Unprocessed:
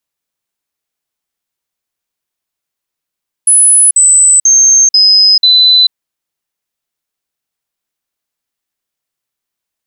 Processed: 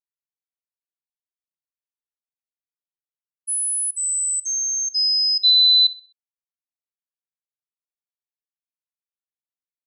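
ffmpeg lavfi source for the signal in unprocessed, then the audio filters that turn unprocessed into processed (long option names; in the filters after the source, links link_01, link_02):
-f lavfi -i "aevalsrc='0.708*clip(min(mod(t,0.49),0.44-mod(t,0.49))/0.005,0,1)*sin(2*PI*10100*pow(2,-floor(t/0.49)/3)*mod(t,0.49))':duration=2.45:sample_rate=44100"
-filter_complex "[0:a]agate=range=-33dB:threshold=-1dB:ratio=3:detection=peak,highshelf=frequency=4700:width_type=q:width=1.5:gain=-9,asplit=2[link_01][link_02];[link_02]adelay=64,lowpass=frequency=4700:poles=1,volume=-14dB,asplit=2[link_03][link_04];[link_04]adelay=64,lowpass=frequency=4700:poles=1,volume=0.43,asplit=2[link_05][link_06];[link_06]adelay=64,lowpass=frequency=4700:poles=1,volume=0.43,asplit=2[link_07][link_08];[link_08]adelay=64,lowpass=frequency=4700:poles=1,volume=0.43[link_09];[link_01][link_03][link_05][link_07][link_09]amix=inputs=5:normalize=0"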